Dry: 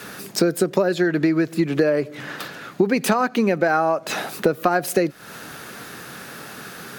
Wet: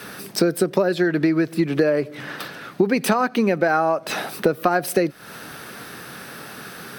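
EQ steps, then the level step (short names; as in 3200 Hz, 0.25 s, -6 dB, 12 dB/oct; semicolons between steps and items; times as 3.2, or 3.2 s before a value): notch 6900 Hz, Q 6; 0.0 dB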